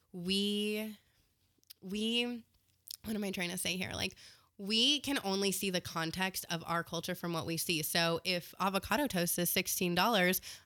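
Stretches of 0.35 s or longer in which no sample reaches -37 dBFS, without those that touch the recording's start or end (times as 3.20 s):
0.89–1.71 s
2.36–2.88 s
4.11–4.62 s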